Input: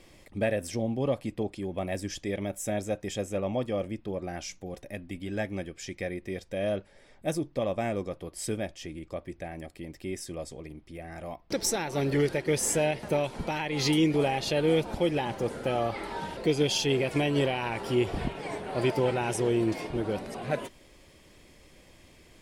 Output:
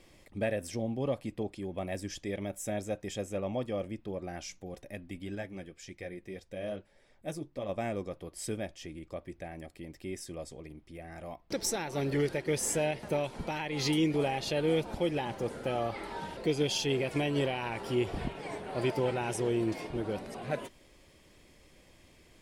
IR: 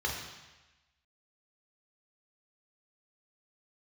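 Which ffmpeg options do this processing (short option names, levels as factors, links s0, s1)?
-filter_complex "[0:a]asettb=1/sr,asplit=3[s0][s1][s2];[s0]atrim=end=5.354[s3];[s1]atrim=start=5.35:end=7.69,asetpts=PTS-STARTPTS,afade=t=in:d=0.004:c=qsin,afade=t=out:st=2.336:d=0.004:c=qsin,flanger=delay=0.2:depth=7.4:regen=-54:speed=1.7:shape=triangular[s4];[s2]atrim=start=7.686[s5];[s3][s4]acrossfade=d=0.004:c1=hsin:c2=qsin[s6];[s6][s5]acrossfade=d=0.004:c1=qsin:c2=hsin,volume=0.631"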